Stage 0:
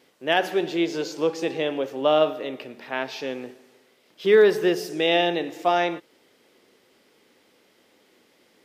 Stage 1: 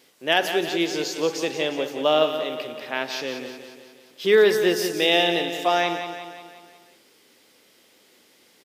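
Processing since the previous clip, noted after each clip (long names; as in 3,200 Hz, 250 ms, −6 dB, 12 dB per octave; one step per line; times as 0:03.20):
high-shelf EQ 3,000 Hz +10 dB
on a send: repeating echo 179 ms, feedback 54%, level −9 dB
on the sum: level −1 dB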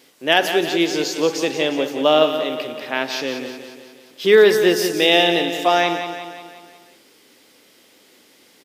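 parametric band 280 Hz +4 dB 0.27 octaves
level +4.5 dB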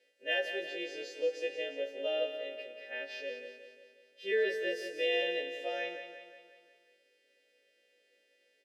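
every partial snapped to a pitch grid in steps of 2 semitones
formant filter e
level −8.5 dB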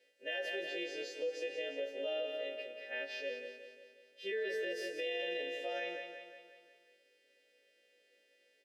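brickwall limiter −30 dBFS, peak gain reduction 9.5 dB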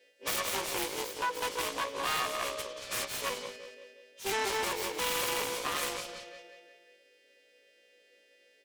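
phase distortion by the signal itself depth 0.71 ms
level +7 dB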